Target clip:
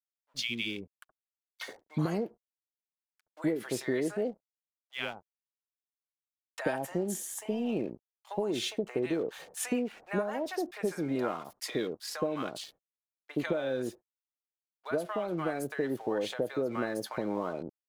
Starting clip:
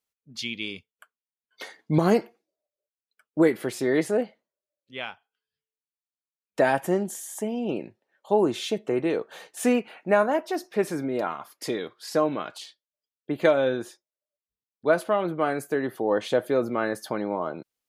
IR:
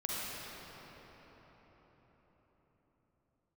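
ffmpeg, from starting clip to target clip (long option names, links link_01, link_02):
-filter_complex "[0:a]aeval=exprs='sgn(val(0))*max(abs(val(0))-0.00237,0)':channel_layout=same,acompressor=threshold=-26dB:ratio=12,acrossover=split=820[link_01][link_02];[link_01]adelay=70[link_03];[link_03][link_02]amix=inputs=2:normalize=0"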